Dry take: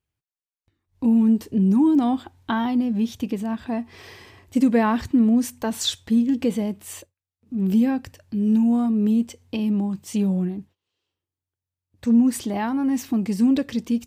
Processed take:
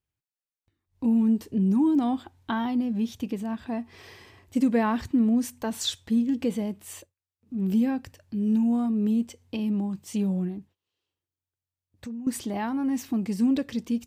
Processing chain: 10.58–12.27 compressor 4:1, threshold -33 dBFS, peak gain reduction 16.5 dB; gain -4.5 dB

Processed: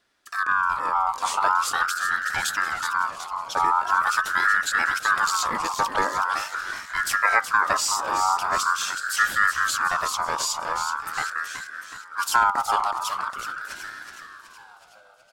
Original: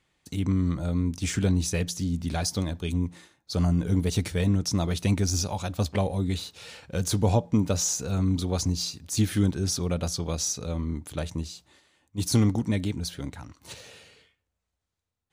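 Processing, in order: frequency shift +24 Hz; frequency-shifting echo 0.372 s, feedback 57%, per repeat -96 Hz, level -8 dB; ring modulator with a swept carrier 1300 Hz, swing 20%, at 0.43 Hz; gain +4.5 dB

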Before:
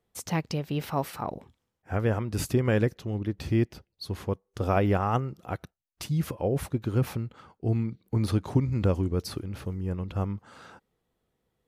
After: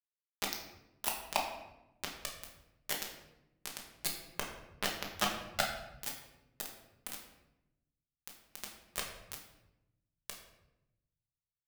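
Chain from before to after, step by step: de-esser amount 90%; HPF 770 Hz 24 dB/oct; high shelf 5500 Hz +8 dB; reverse; compressor 6:1, threshold -47 dBFS, peak gain reduction 20.5 dB; reverse; dispersion lows, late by 74 ms, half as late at 2800 Hz; companded quantiser 2-bit; reverb RT60 0.90 s, pre-delay 5 ms, DRR -0.5 dB; gain +8.5 dB

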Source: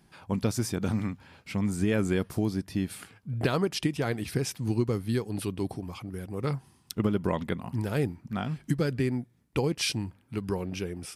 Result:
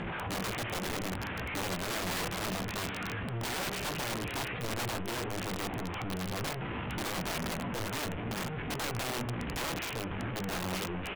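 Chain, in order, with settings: delta modulation 16 kbps, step -25.5 dBFS; vibrato 11 Hz 14 cents; air absorption 89 m; doubler 17 ms -7 dB; echo 0.278 s -15 dB; on a send at -12 dB: reverb RT60 0.80 s, pre-delay 4 ms; on the sum: wrapped overs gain 24 dB; gain -5.5 dB

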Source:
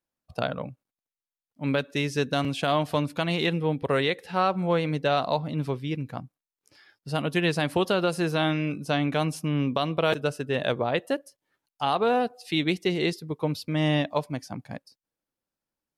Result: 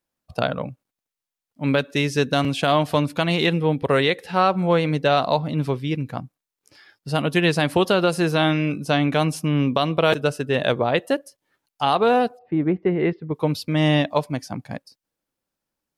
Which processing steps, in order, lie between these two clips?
12.37–13.33 LPF 1100 Hz -> 2500 Hz 24 dB/oct; gain +5.5 dB

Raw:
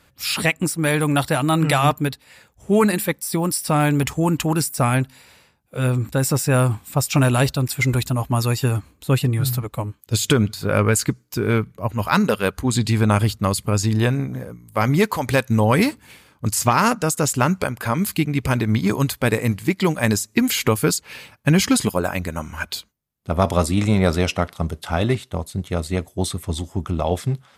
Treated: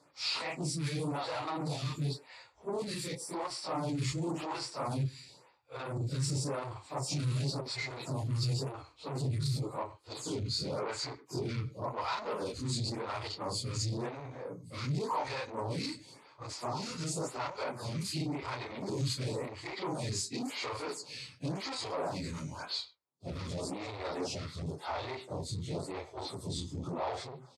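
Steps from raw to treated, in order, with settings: phase scrambler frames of 0.1 s; limiter -15 dBFS, peak gain reduction 10.5 dB; speakerphone echo 0.1 s, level -19 dB; soft clip -27 dBFS, distortion -9 dB; speaker cabinet 110–8300 Hz, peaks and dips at 130 Hz +6 dB, 210 Hz -9 dB, 950 Hz +4 dB, 1600 Hz -7 dB, 2900 Hz -4 dB, 4500 Hz +9 dB; photocell phaser 0.93 Hz; gain -2.5 dB

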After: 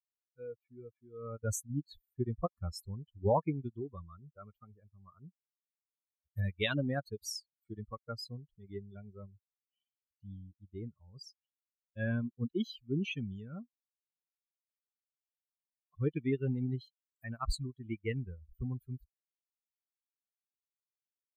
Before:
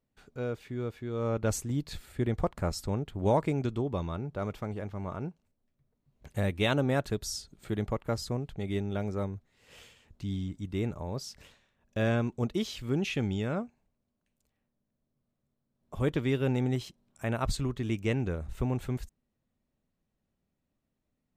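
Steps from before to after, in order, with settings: per-bin expansion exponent 3; gain +1.5 dB

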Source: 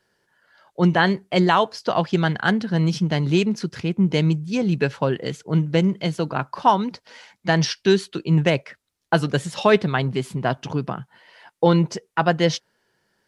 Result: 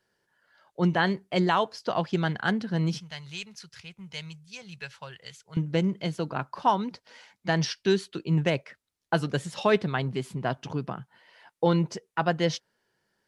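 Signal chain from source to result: 3–5.57 passive tone stack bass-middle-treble 10-0-10; gain -6.5 dB

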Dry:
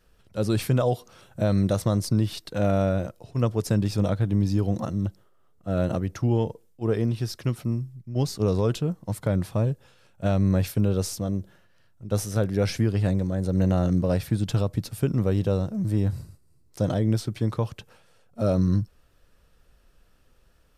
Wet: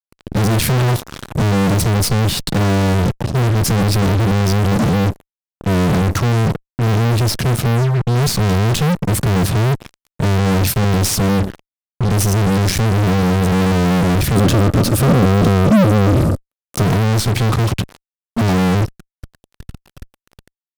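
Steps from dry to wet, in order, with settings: resonant low shelf 280 Hz +10 dB, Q 1.5; fuzz box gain 42 dB, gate -42 dBFS; 14.35–16.83 small resonant body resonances 270/540/1200 Hz, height 8 dB, ringing for 20 ms

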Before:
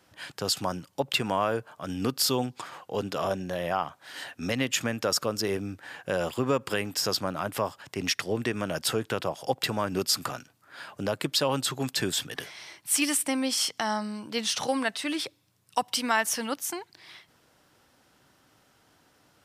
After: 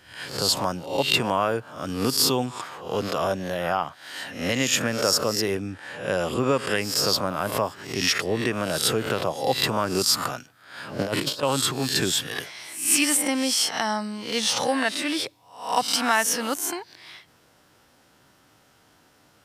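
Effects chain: spectral swells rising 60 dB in 0.51 s; 5.55–6.81 steep low-pass 12000 Hz 96 dB/oct; 10.99–11.43 negative-ratio compressor -29 dBFS, ratio -0.5; gain +2.5 dB

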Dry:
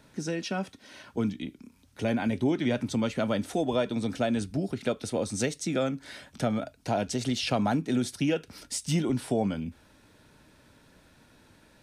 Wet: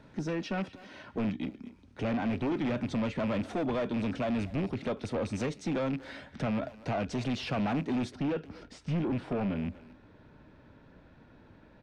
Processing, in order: rattling part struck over -32 dBFS, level -28 dBFS; soft clip -30 dBFS, distortion -8 dB; tape spacing loss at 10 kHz 23 dB, from 8.1 s at 10 kHz 36 dB; speakerphone echo 0.24 s, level -14 dB; gain +4 dB

